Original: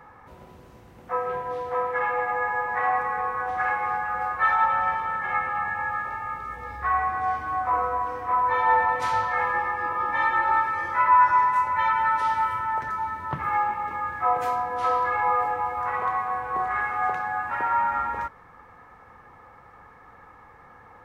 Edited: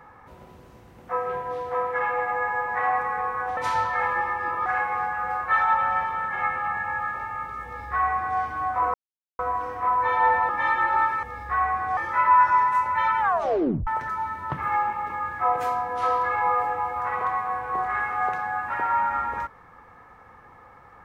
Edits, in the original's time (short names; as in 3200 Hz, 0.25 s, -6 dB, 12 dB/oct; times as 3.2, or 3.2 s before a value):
6.56–7.3 copy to 10.78
7.85 insert silence 0.45 s
8.95–10.04 move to 3.57
12.01 tape stop 0.67 s